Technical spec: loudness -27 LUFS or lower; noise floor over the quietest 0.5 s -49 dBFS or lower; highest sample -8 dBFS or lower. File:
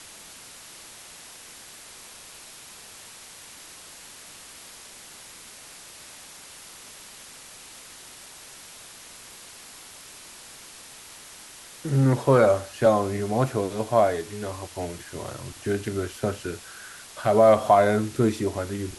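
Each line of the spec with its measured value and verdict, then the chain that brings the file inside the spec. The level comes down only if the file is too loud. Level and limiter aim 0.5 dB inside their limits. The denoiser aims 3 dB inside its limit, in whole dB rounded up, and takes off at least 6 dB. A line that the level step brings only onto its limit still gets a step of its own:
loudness -23.5 LUFS: fail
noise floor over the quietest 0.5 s -45 dBFS: fail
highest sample -5.5 dBFS: fail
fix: denoiser 6 dB, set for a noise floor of -45 dBFS; gain -4 dB

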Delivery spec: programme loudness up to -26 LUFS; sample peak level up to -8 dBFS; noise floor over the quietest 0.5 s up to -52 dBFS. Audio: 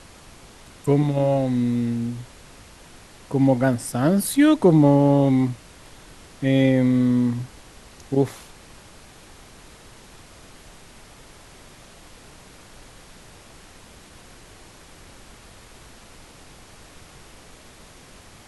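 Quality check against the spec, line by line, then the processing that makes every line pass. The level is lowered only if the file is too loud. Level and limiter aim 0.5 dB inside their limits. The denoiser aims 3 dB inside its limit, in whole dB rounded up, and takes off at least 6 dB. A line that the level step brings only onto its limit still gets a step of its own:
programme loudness -20.0 LUFS: fail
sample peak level -4.5 dBFS: fail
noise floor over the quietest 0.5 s -46 dBFS: fail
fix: gain -6.5 dB

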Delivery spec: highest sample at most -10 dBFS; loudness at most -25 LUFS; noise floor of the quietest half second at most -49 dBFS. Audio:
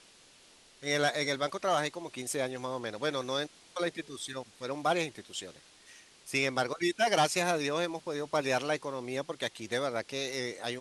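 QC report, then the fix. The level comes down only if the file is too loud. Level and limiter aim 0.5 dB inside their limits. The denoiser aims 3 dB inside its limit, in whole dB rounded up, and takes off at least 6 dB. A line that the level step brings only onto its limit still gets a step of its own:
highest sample -14.5 dBFS: OK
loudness -32.5 LUFS: OK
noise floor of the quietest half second -59 dBFS: OK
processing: none

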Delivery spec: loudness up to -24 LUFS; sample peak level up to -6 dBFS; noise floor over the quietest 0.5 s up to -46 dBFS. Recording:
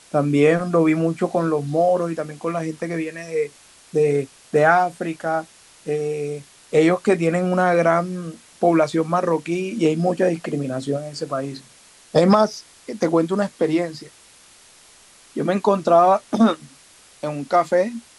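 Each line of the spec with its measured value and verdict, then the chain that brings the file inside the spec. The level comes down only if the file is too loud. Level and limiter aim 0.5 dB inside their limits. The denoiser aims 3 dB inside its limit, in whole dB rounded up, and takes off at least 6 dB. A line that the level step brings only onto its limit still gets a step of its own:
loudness -20.5 LUFS: fail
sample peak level -3.5 dBFS: fail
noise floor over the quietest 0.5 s -50 dBFS: OK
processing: gain -4 dB

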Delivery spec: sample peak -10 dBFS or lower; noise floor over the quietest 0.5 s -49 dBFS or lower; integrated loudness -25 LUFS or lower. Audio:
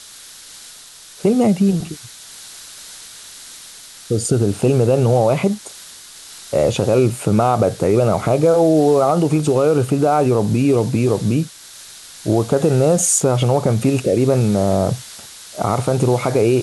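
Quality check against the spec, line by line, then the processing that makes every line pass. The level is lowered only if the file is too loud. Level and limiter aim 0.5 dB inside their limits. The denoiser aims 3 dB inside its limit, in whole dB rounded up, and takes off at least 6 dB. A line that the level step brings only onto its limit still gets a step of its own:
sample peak -4.0 dBFS: fail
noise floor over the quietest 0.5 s -41 dBFS: fail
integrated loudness -16.5 LUFS: fail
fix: gain -9 dB

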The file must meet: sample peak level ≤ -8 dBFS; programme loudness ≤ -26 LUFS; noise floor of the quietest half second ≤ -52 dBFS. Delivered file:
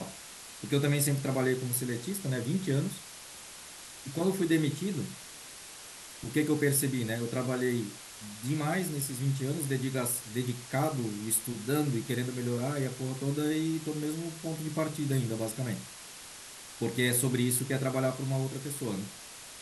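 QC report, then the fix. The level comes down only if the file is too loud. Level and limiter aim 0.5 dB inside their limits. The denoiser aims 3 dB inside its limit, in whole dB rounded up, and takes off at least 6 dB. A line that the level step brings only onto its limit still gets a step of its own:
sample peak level -14.5 dBFS: OK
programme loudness -31.5 LUFS: OK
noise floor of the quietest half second -47 dBFS: fail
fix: denoiser 8 dB, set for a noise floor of -47 dBFS

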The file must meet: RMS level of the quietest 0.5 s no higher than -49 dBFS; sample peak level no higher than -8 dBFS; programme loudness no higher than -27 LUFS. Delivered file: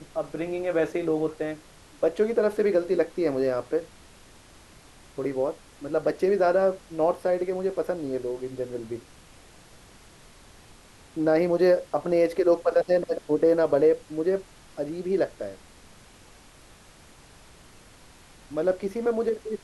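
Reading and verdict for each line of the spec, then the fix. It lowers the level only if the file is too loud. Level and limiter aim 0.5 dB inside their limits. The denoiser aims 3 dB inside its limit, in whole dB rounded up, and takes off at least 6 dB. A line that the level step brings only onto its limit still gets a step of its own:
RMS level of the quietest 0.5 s -52 dBFS: OK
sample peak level -10.5 dBFS: OK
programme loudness -25.5 LUFS: fail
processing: gain -2 dB

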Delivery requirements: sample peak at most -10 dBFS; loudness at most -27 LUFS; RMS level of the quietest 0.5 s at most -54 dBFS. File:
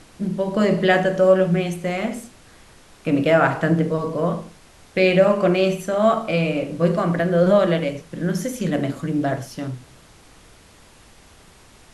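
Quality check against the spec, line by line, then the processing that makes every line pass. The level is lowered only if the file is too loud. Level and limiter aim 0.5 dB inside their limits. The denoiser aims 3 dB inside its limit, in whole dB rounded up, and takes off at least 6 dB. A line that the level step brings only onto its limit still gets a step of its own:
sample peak -4.0 dBFS: fail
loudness -20.0 LUFS: fail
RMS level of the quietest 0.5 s -49 dBFS: fail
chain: gain -7.5 dB

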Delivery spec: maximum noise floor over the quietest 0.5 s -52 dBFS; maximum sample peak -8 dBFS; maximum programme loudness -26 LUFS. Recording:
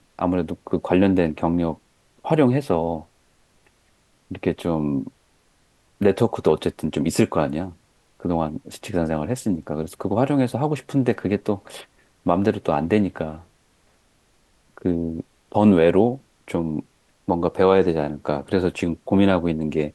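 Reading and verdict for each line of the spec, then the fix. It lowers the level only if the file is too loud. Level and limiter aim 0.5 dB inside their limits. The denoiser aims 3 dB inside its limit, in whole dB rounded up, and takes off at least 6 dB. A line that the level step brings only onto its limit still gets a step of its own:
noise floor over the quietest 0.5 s -61 dBFS: OK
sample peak -4.5 dBFS: fail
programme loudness -22.0 LUFS: fail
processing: gain -4.5 dB

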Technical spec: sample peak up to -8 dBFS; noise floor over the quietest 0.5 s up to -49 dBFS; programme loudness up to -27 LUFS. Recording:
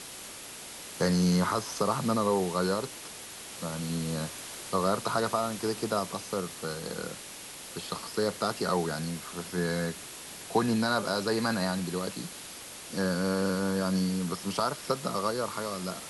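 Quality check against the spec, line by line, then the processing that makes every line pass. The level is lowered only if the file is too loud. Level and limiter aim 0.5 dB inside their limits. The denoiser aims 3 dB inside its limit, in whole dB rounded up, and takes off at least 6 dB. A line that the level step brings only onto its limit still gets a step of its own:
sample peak -12.5 dBFS: OK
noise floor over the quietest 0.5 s -44 dBFS: fail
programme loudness -30.5 LUFS: OK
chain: denoiser 8 dB, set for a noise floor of -44 dBFS

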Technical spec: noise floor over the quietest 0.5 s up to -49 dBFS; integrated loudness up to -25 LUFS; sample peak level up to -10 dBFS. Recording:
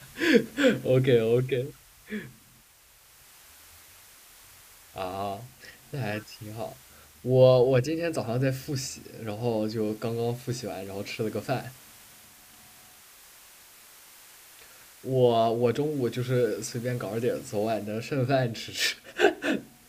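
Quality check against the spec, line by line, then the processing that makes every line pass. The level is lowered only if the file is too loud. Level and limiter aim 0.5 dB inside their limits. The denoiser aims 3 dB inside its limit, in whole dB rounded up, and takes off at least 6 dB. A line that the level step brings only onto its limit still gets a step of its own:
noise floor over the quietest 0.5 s -57 dBFS: OK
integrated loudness -27.0 LUFS: OK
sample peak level -6.5 dBFS: fail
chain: limiter -10.5 dBFS

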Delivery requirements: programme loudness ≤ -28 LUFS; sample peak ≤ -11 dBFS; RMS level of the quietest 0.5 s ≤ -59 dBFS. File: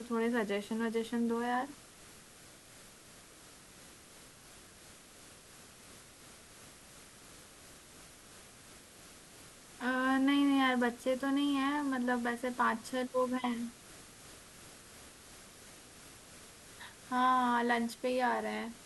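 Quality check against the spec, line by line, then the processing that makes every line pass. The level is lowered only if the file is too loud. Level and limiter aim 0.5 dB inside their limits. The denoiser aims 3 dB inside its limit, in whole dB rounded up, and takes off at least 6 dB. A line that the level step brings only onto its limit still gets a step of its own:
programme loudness -32.5 LUFS: OK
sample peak -18.5 dBFS: OK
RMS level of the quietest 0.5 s -56 dBFS: fail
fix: denoiser 6 dB, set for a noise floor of -56 dBFS

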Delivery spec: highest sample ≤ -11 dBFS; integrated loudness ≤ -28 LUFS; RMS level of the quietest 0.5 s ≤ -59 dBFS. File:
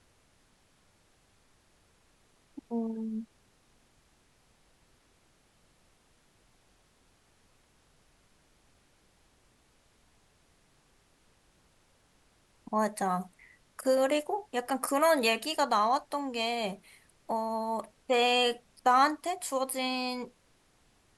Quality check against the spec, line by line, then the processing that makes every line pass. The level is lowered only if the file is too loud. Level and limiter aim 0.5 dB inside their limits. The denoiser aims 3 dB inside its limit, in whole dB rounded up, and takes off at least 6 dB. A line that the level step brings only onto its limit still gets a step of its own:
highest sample -13.5 dBFS: OK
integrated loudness -29.5 LUFS: OK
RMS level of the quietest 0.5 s -67 dBFS: OK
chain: none

